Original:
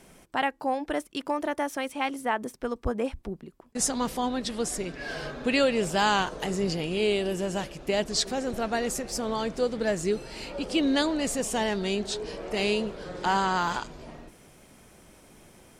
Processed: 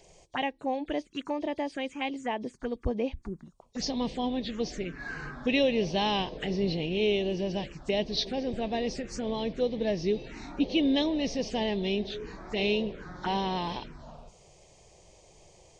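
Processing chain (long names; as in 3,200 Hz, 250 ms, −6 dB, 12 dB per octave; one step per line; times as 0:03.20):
hearing-aid frequency compression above 3,200 Hz 1.5 to 1
0:10.26–0:10.66: hollow resonant body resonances 280/720/3,600 Hz, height 9 dB
phaser swept by the level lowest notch 220 Hz, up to 1,400 Hz, full sweep at −26 dBFS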